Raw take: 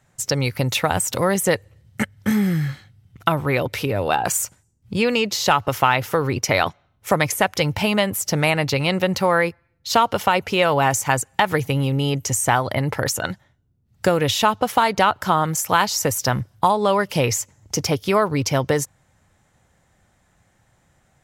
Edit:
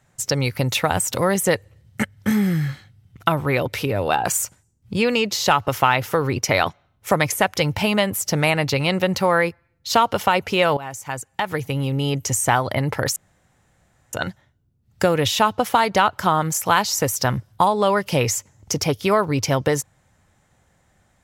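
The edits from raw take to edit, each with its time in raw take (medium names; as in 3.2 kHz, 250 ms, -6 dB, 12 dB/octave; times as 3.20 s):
10.77–12.24 s: fade in, from -17.5 dB
13.16 s: insert room tone 0.97 s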